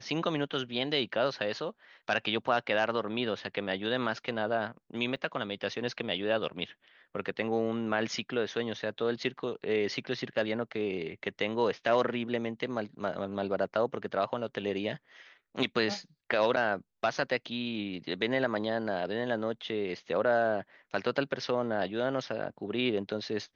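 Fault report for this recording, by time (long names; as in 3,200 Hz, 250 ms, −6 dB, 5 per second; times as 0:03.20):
0:05.16–0:05.17: drop-out 6.3 ms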